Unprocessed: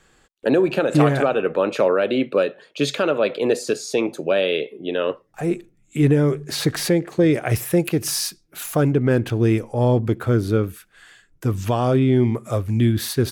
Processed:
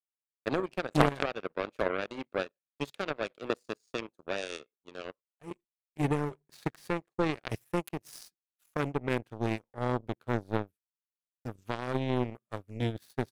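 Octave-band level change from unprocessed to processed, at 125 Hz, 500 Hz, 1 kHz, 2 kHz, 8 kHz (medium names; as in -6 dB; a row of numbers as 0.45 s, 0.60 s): -15.5 dB, -14.5 dB, -7.5 dB, -9.0 dB, -22.5 dB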